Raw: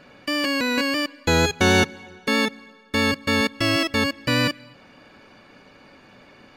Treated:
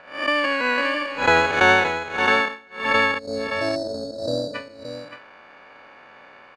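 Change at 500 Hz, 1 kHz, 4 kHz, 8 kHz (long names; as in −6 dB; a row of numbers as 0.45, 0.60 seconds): +2.0, +6.0, −4.0, −9.5 decibels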